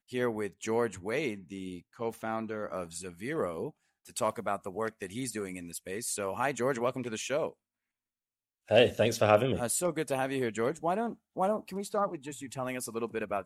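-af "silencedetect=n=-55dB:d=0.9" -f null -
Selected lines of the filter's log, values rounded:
silence_start: 7.53
silence_end: 8.68 | silence_duration: 1.14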